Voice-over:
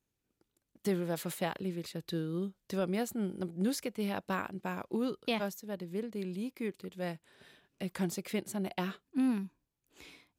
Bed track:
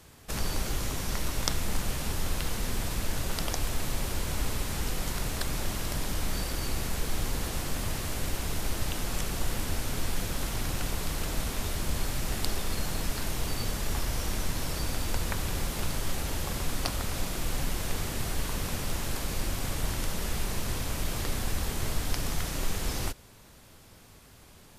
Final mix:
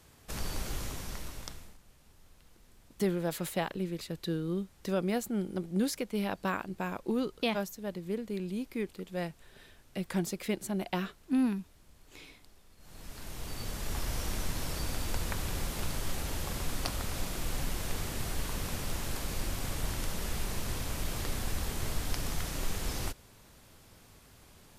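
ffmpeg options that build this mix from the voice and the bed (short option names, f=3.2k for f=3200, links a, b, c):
-filter_complex "[0:a]adelay=2150,volume=2dB[a];[1:a]volume=20.5dB,afade=t=out:st=0.78:d=0.99:silence=0.0630957,afade=t=in:st=12.78:d=1.34:silence=0.0501187[b];[a][b]amix=inputs=2:normalize=0"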